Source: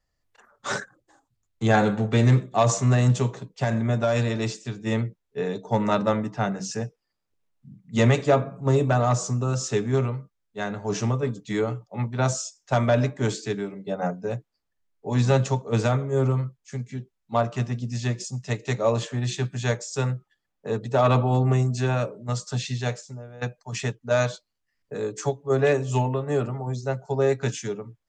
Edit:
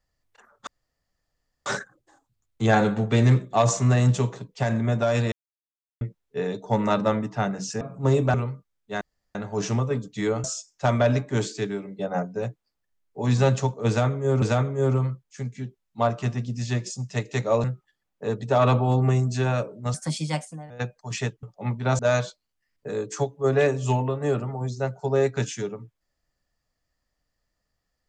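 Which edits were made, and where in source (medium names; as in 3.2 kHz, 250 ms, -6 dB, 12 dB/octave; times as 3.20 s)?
0.67 s: insert room tone 0.99 s
4.33–5.02 s: mute
6.82–8.43 s: delete
8.96–10.00 s: delete
10.67 s: insert room tone 0.34 s
11.76–12.32 s: move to 24.05 s
15.76–16.30 s: loop, 2 plays
18.98–20.07 s: delete
22.37–23.32 s: speed 125%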